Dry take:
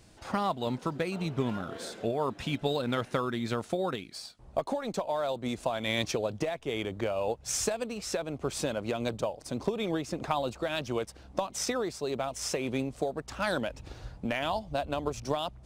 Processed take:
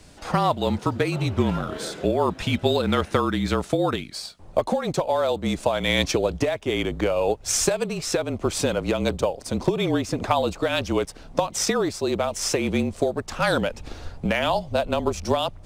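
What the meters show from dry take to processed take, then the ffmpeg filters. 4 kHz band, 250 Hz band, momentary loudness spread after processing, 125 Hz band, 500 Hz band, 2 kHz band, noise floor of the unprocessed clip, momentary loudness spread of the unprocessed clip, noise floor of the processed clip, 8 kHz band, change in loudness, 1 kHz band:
+8.5 dB, +8.5 dB, 5 LU, +9.5 dB, +8.5 dB, +8.5 dB, −53 dBFS, 5 LU, −44 dBFS, +8.5 dB, +8.5 dB, +8.0 dB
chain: -af "afreqshift=-36,volume=8.5dB"

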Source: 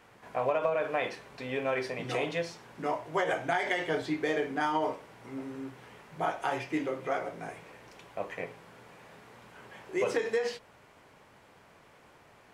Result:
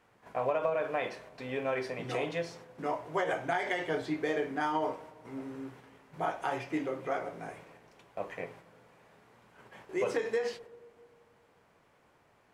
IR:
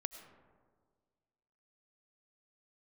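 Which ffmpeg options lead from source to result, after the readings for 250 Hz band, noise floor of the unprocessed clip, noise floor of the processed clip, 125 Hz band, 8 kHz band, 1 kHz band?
−1.5 dB, −59 dBFS, −66 dBFS, −1.5 dB, −4.0 dB, −2.0 dB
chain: -filter_complex "[0:a]agate=range=-6dB:threshold=-50dB:ratio=16:detection=peak,asplit=2[link_01][link_02];[1:a]atrim=start_sample=2205,asetrate=35280,aresample=44100,lowpass=2200[link_03];[link_02][link_03]afir=irnorm=-1:irlink=0,volume=-10.5dB[link_04];[link_01][link_04]amix=inputs=2:normalize=0,volume=-3.5dB"

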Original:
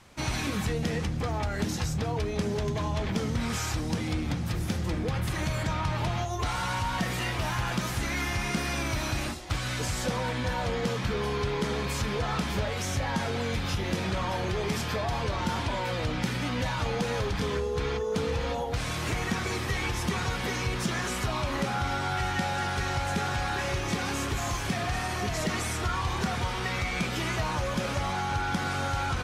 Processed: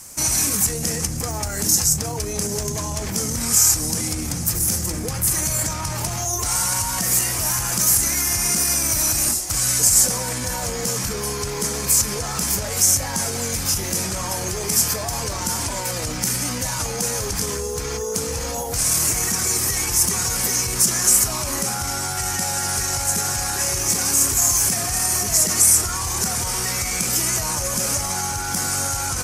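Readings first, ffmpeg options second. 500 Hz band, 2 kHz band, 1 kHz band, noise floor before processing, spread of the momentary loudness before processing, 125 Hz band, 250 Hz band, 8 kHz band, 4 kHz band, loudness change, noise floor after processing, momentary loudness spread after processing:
+2.0 dB, +2.0 dB, +2.0 dB, −32 dBFS, 1 LU, +1.5 dB, +1.5 dB, +23.5 dB, +9.0 dB, +11.0 dB, −27 dBFS, 9 LU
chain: -af "alimiter=level_in=1dB:limit=-24dB:level=0:latency=1:release=18,volume=-1dB,aexciter=amount=15.5:drive=3.6:freq=5400,volume=4.5dB"

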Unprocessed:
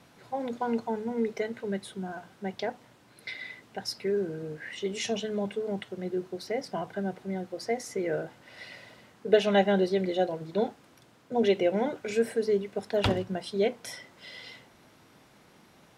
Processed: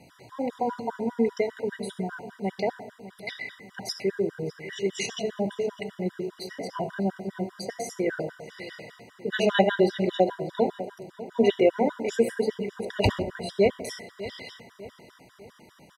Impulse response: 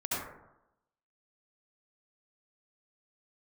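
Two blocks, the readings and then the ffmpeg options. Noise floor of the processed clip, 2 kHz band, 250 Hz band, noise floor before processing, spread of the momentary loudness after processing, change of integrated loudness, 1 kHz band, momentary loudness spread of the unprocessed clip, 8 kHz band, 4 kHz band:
−57 dBFS, +3.0 dB, +2.5 dB, −59 dBFS, 17 LU, +2.0 dB, +2.5 dB, 17 LU, +3.0 dB, +1.5 dB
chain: -filter_complex "[0:a]asplit=2[link_01][link_02];[link_02]adelay=600,lowpass=frequency=3400:poles=1,volume=-15.5dB,asplit=2[link_03][link_04];[link_04]adelay=600,lowpass=frequency=3400:poles=1,volume=0.47,asplit=2[link_05][link_06];[link_06]adelay=600,lowpass=frequency=3400:poles=1,volume=0.47,asplit=2[link_07][link_08];[link_08]adelay=600,lowpass=frequency=3400:poles=1,volume=0.47[link_09];[link_01][link_03][link_05][link_07][link_09]amix=inputs=5:normalize=0,asplit=2[link_10][link_11];[1:a]atrim=start_sample=2205[link_12];[link_11][link_12]afir=irnorm=-1:irlink=0,volume=-15.5dB[link_13];[link_10][link_13]amix=inputs=2:normalize=0,afftfilt=real='re*gt(sin(2*PI*5*pts/sr)*(1-2*mod(floor(b*sr/1024/970),2)),0)':imag='im*gt(sin(2*PI*5*pts/sr)*(1-2*mod(floor(b*sr/1024/970),2)),0)':win_size=1024:overlap=0.75,volume=4.5dB"

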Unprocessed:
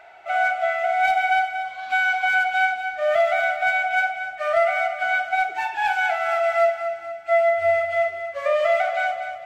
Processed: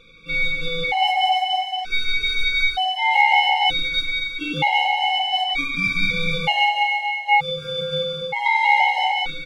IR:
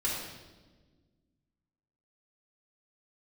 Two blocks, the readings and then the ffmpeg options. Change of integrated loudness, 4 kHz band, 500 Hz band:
+2.0 dB, +16.5 dB, −10.0 dB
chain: -filter_complex "[0:a]aeval=exprs='val(0)*sin(2*PI*1500*n/s)':channel_layout=same,aecho=1:1:180|315|416.2|492.2|549.1:0.631|0.398|0.251|0.158|0.1,asplit=2[link_01][link_02];[1:a]atrim=start_sample=2205,asetrate=36162,aresample=44100[link_03];[link_02][link_03]afir=irnorm=-1:irlink=0,volume=-20.5dB[link_04];[link_01][link_04]amix=inputs=2:normalize=0,afftfilt=real='re*gt(sin(2*PI*0.54*pts/sr)*(1-2*mod(floor(b*sr/1024/550),2)),0)':imag='im*gt(sin(2*PI*0.54*pts/sr)*(1-2*mod(floor(b*sr/1024/550),2)),0)':win_size=1024:overlap=0.75,volume=4.5dB"

